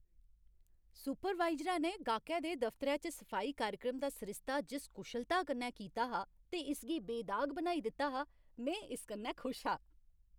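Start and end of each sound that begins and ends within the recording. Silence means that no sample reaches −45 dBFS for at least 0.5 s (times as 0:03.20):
0:01.00–0:09.76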